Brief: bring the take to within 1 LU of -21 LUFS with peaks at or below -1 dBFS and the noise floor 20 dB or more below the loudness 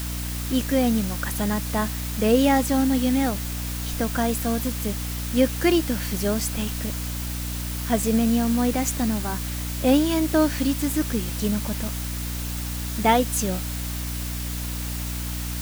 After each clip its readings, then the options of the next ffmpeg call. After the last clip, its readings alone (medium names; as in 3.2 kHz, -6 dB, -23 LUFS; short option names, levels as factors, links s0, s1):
hum 60 Hz; highest harmonic 300 Hz; hum level -28 dBFS; noise floor -30 dBFS; noise floor target -44 dBFS; loudness -24.0 LUFS; peak level -6.5 dBFS; loudness target -21.0 LUFS
-> -af "bandreject=f=60:t=h:w=6,bandreject=f=120:t=h:w=6,bandreject=f=180:t=h:w=6,bandreject=f=240:t=h:w=6,bandreject=f=300:t=h:w=6"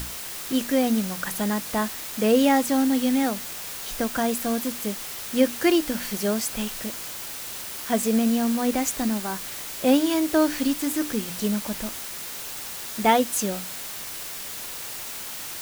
hum not found; noise floor -35 dBFS; noise floor target -45 dBFS
-> -af "afftdn=nr=10:nf=-35"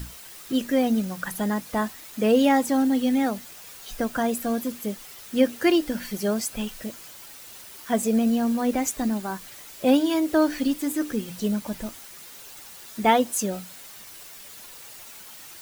noise floor -44 dBFS; noise floor target -45 dBFS
-> -af "afftdn=nr=6:nf=-44"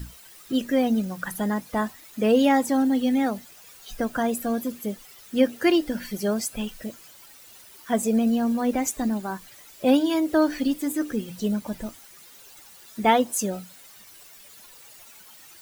noise floor -49 dBFS; loudness -24.5 LUFS; peak level -7.5 dBFS; loudness target -21.0 LUFS
-> -af "volume=1.5"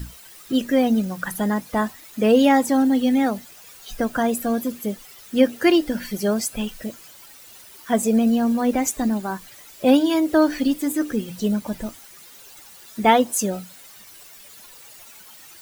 loudness -21.0 LUFS; peak level -4.0 dBFS; noise floor -45 dBFS